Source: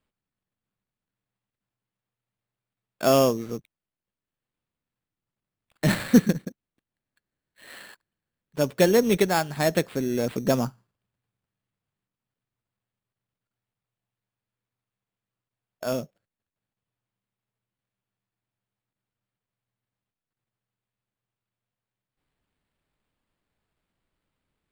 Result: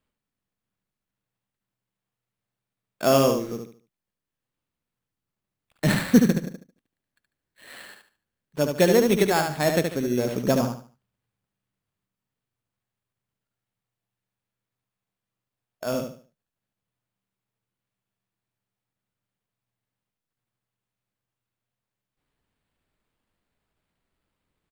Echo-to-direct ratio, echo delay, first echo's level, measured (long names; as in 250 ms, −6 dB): −5.0 dB, 73 ms, −5.5 dB